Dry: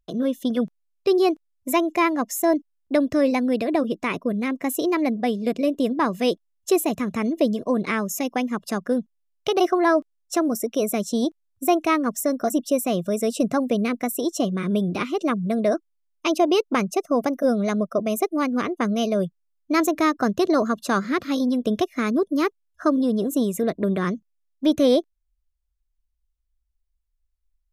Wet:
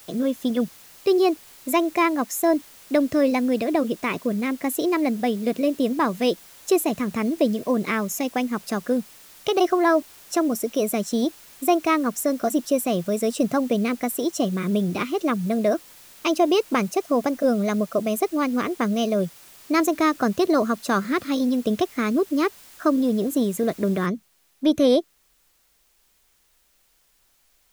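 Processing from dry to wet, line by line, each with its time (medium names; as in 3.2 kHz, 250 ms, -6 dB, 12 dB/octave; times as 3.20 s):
24.06 s: noise floor step -48 dB -64 dB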